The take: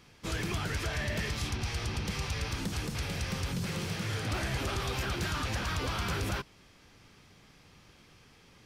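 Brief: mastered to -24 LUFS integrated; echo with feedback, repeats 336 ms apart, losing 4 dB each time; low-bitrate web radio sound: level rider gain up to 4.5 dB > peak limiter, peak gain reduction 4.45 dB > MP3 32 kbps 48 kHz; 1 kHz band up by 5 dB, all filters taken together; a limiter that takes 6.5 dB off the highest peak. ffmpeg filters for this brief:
-af "equalizer=f=1000:t=o:g=6.5,alimiter=level_in=1.78:limit=0.0631:level=0:latency=1,volume=0.562,aecho=1:1:336|672|1008|1344|1680|2016|2352|2688|3024:0.631|0.398|0.25|0.158|0.0994|0.0626|0.0394|0.0249|0.0157,dynaudnorm=m=1.68,alimiter=level_in=1.5:limit=0.0631:level=0:latency=1,volume=0.668,volume=4.47" -ar 48000 -c:a libmp3lame -b:a 32k

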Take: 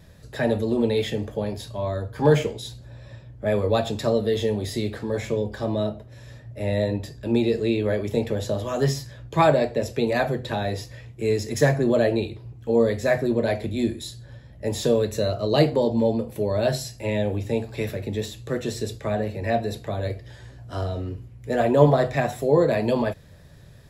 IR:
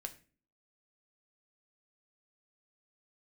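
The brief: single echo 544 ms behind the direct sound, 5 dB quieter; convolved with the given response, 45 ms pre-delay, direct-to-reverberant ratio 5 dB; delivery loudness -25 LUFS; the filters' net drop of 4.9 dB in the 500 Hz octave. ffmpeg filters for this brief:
-filter_complex "[0:a]equalizer=f=500:t=o:g=-6,aecho=1:1:544:0.562,asplit=2[s0][s1];[1:a]atrim=start_sample=2205,adelay=45[s2];[s1][s2]afir=irnorm=-1:irlink=0,volume=0.794[s3];[s0][s3]amix=inputs=2:normalize=0"

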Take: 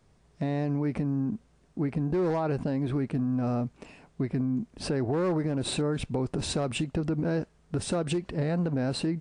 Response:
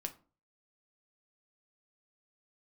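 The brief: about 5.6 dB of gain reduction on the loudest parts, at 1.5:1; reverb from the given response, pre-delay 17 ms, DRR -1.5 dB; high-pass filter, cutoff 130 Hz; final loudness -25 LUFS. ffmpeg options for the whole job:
-filter_complex "[0:a]highpass=130,acompressor=threshold=0.01:ratio=1.5,asplit=2[s0][s1];[1:a]atrim=start_sample=2205,adelay=17[s2];[s1][s2]afir=irnorm=-1:irlink=0,volume=1.41[s3];[s0][s3]amix=inputs=2:normalize=0,volume=2.11"

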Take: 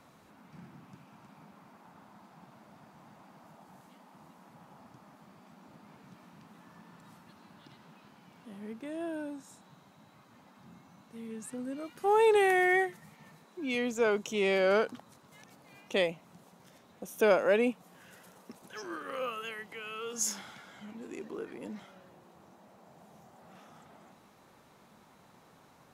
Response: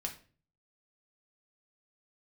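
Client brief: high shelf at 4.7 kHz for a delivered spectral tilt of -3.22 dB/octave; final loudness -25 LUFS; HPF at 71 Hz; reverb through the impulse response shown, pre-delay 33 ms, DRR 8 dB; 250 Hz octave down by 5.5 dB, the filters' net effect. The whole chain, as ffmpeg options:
-filter_complex "[0:a]highpass=71,equalizer=f=250:t=o:g=-8,highshelf=f=4700:g=-8.5,asplit=2[s0][s1];[1:a]atrim=start_sample=2205,adelay=33[s2];[s1][s2]afir=irnorm=-1:irlink=0,volume=0.398[s3];[s0][s3]amix=inputs=2:normalize=0,volume=2.11"

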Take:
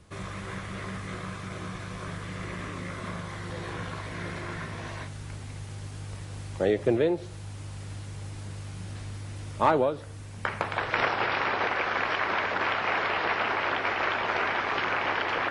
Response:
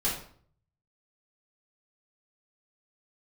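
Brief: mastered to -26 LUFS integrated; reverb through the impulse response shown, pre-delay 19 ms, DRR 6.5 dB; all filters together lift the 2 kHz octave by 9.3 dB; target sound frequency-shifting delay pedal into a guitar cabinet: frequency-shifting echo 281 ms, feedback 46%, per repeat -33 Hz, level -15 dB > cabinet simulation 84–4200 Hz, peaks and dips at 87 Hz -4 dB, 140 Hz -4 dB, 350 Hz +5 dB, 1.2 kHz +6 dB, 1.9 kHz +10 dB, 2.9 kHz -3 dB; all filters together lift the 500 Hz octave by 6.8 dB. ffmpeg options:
-filter_complex "[0:a]equalizer=f=500:t=o:g=6.5,equalizer=f=2000:t=o:g=3.5,asplit=2[s0][s1];[1:a]atrim=start_sample=2205,adelay=19[s2];[s1][s2]afir=irnorm=-1:irlink=0,volume=0.188[s3];[s0][s3]amix=inputs=2:normalize=0,asplit=5[s4][s5][s6][s7][s8];[s5]adelay=281,afreqshift=-33,volume=0.178[s9];[s6]adelay=562,afreqshift=-66,volume=0.0822[s10];[s7]adelay=843,afreqshift=-99,volume=0.0376[s11];[s8]adelay=1124,afreqshift=-132,volume=0.0174[s12];[s4][s9][s10][s11][s12]amix=inputs=5:normalize=0,highpass=84,equalizer=f=87:t=q:w=4:g=-4,equalizer=f=140:t=q:w=4:g=-4,equalizer=f=350:t=q:w=4:g=5,equalizer=f=1200:t=q:w=4:g=6,equalizer=f=1900:t=q:w=4:g=10,equalizer=f=2900:t=q:w=4:g=-3,lowpass=f=4200:w=0.5412,lowpass=f=4200:w=1.3066,volume=0.531"

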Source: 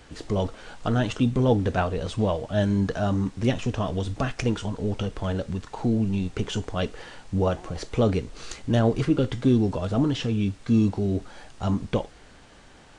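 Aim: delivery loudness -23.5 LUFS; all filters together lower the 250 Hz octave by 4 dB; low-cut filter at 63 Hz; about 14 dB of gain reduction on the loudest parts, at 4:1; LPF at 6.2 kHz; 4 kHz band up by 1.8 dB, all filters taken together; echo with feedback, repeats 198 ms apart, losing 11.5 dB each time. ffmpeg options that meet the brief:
-af "highpass=63,lowpass=6200,equalizer=f=250:t=o:g=-5,equalizer=f=4000:t=o:g=3,acompressor=threshold=0.0158:ratio=4,aecho=1:1:198|396|594:0.266|0.0718|0.0194,volume=5.62"

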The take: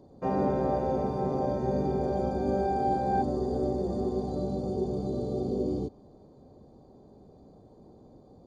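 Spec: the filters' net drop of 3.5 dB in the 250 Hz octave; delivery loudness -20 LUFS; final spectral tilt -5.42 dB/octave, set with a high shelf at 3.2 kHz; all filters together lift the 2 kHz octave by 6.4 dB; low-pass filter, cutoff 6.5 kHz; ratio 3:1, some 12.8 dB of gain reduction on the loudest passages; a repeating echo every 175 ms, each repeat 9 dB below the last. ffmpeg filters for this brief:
-af "lowpass=6500,equalizer=f=250:t=o:g=-5,equalizer=f=2000:t=o:g=7,highshelf=f=3200:g=7,acompressor=threshold=0.00794:ratio=3,aecho=1:1:175|350|525|700:0.355|0.124|0.0435|0.0152,volume=11.9"

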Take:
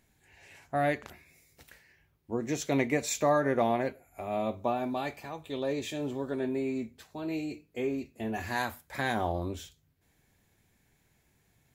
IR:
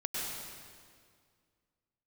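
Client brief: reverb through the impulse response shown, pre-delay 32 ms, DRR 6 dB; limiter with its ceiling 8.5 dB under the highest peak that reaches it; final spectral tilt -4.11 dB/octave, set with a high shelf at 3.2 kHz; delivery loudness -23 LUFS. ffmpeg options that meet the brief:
-filter_complex "[0:a]highshelf=f=3200:g=7.5,alimiter=limit=0.1:level=0:latency=1,asplit=2[s0][s1];[1:a]atrim=start_sample=2205,adelay=32[s2];[s1][s2]afir=irnorm=-1:irlink=0,volume=0.299[s3];[s0][s3]amix=inputs=2:normalize=0,volume=2.99"

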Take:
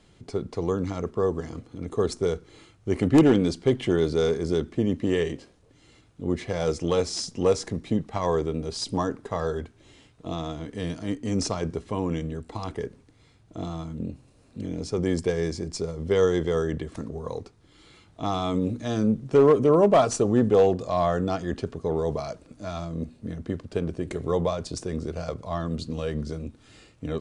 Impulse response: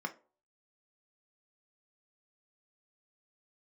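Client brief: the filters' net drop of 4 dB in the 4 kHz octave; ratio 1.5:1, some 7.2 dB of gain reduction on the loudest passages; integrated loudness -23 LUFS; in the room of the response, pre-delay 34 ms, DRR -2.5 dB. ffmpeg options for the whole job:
-filter_complex "[0:a]equalizer=f=4000:t=o:g=-5.5,acompressor=threshold=0.02:ratio=1.5,asplit=2[s0][s1];[1:a]atrim=start_sample=2205,adelay=34[s2];[s1][s2]afir=irnorm=-1:irlink=0,volume=1[s3];[s0][s3]amix=inputs=2:normalize=0,volume=1.68"

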